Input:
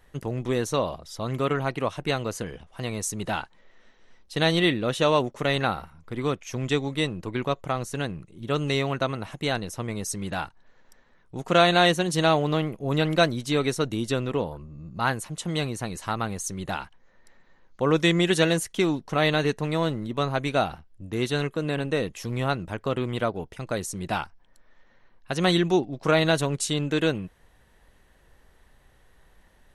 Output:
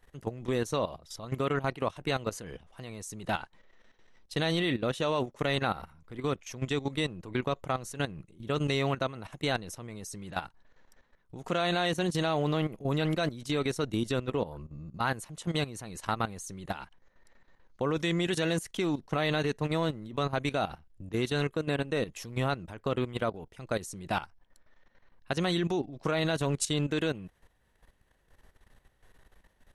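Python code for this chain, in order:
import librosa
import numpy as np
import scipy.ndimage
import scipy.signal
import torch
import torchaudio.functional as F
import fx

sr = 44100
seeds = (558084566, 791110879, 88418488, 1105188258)

y = fx.level_steps(x, sr, step_db=14)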